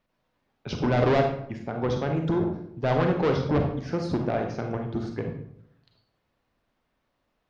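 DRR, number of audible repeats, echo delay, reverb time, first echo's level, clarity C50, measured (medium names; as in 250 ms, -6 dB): 3.0 dB, no echo, no echo, 0.70 s, no echo, 5.0 dB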